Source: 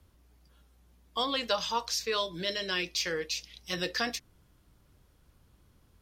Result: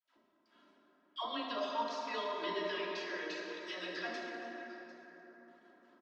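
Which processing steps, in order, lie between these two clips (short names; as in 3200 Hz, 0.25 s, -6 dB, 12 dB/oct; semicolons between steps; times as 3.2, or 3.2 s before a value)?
elliptic high-pass 170 Hz, stop band 40 dB; gate with hold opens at -59 dBFS; tilt +3 dB/oct; comb 3.1 ms, depth 77%; compressor 6:1, threshold -36 dBFS, peak gain reduction 16 dB; tape spacing loss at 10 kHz 40 dB; dispersion lows, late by 99 ms, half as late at 620 Hz; on a send: delay with a stepping band-pass 0.187 s, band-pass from 300 Hz, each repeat 1.4 oct, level -7 dB; on the sum: plate-style reverb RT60 4.4 s, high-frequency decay 0.4×, DRR -2.5 dB; gain +5 dB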